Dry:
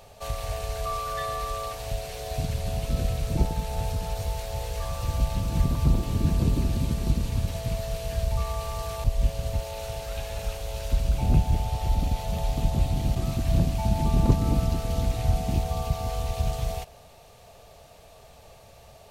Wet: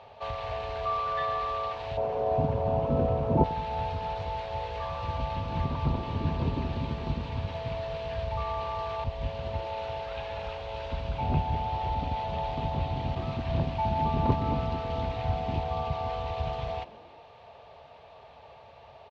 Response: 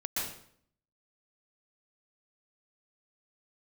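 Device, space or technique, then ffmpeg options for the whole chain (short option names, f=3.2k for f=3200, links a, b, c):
frequency-shifting delay pedal into a guitar cabinet: -filter_complex "[0:a]asplit=5[a][b][c][d][e];[b]adelay=127,afreqshift=-130,volume=-23dB[f];[c]adelay=254,afreqshift=-260,volume=-27.4dB[g];[d]adelay=381,afreqshift=-390,volume=-31.9dB[h];[e]adelay=508,afreqshift=-520,volume=-36.3dB[i];[a][f][g][h][i]amix=inputs=5:normalize=0,highpass=96,equalizer=f=120:t=q:w=4:g=-5,equalizer=f=190:t=q:w=4:g=-9,equalizer=f=320:t=q:w=4:g=-5,equalizer=f=930:t=q:w=4:g=8,lowpass=f=3.6k:w=0.5412,lowpass=f=3.6k:w=1.3066,asettb=1/sr,asplit=3[j][k][l];[j]atrim=end=1.974[m];[k]atrim=start=1.97:end=3.44,asetpts=PTS-STARTPTS,afade=t=in:d=0.004:c=qsin,afade=t=out:st=1.466:d=0.004:c=qsin,equalizer=f=125:t=o:w=1:g=5,equalizer=f=250:t=o:w=1:g=9,equalizer=f=500:t=o:w=1:g=8,equalizer=f=1k:t=o:w=1:g=6,equalizer=f=2k:t=o:w=1:g=-7,equalizer=f=4k:t=o:w=1:g=-10,equalizer=f=8k:t=o:w=1:g=-5[n];[l]atrim=start=3.436[o];[m][n]acrossfade=d=0.004:c1=hsin:c2=qsin[p];[p][o]acrossfade=d=0.004:c1=qsin:c2=hsin"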